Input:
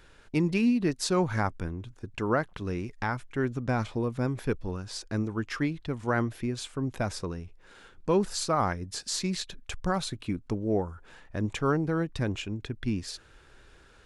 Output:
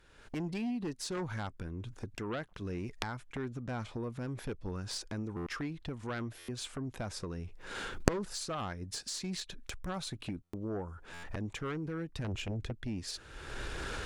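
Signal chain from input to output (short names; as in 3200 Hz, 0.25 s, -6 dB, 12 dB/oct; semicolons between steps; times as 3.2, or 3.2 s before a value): recorder AGC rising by 39 dB/s; 12.24–12.73 low shelf 170 Hz +9.5 dB; added harmonics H 3 -12 dB, 7 -21 dB, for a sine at -3 dBFS; stuck buffer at 5.36/6.38/10.43/11.13, samples 512, times 8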